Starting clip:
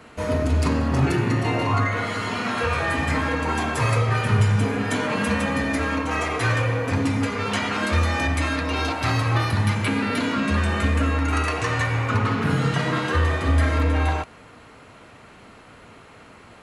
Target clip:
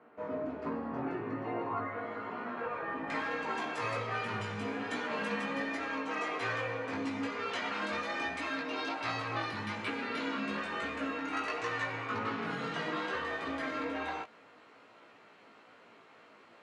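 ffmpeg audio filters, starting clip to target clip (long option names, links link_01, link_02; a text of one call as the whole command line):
ffmpeg -i in.wav -af "highpass=290,flanger=delay=17:depth=2.1:speed=1.2,asetnsamples=nb_out_samples=441:pad=0,asendcmd='3.1 lowpass f 5000',lowpass=1300,volume=-7dB" out.wav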